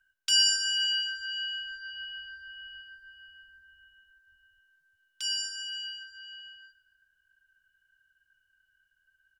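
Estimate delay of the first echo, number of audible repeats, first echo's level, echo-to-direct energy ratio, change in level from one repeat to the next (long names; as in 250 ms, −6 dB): 118 ms, 3, −17.5 dB, −17.0 dB, −8.0 dB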